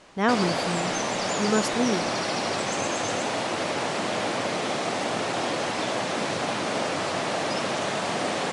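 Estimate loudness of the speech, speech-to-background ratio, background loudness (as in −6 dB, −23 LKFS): −27.5 LKFS, −0.5 dB, −27.0 LKFS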